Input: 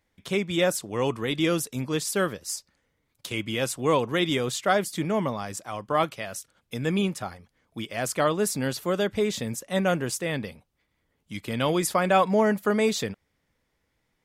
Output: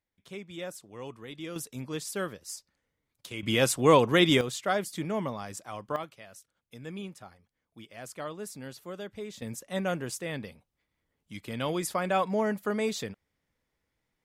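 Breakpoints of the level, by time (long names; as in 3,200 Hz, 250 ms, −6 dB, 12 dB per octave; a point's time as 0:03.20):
−15.5 dB
from 0:01.56 −8 dB
from 0:03.43 +3 dB
from 0:04.41 −5.5 dB
from 0:05.96 −14.5 dB
from 0:09.42 −6.5 dB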